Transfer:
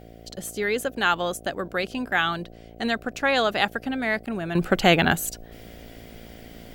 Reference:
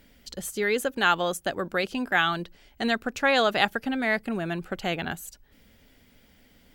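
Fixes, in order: de-hum 56.8 Hz, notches 13; interpolate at 4.26 s, 7.5 ms; expander -37 dBFS, range -21 dB; trim 0 dB, from 4.55 s -11.5 dB

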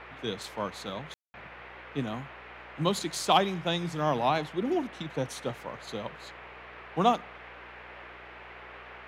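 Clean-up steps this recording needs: de-hum 60.6 Hz, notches 12; room tone fill 1.14–1.34 s; noise print and reduce 28 dB

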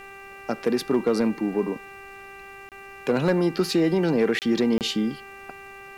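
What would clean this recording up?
clip repair -13.5 dBFS; de-hum 393.3 Hz, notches 7; interpolate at 2.69/4.39/4.78 s, 28 ms; expander -35 dBFS, range -21 dB

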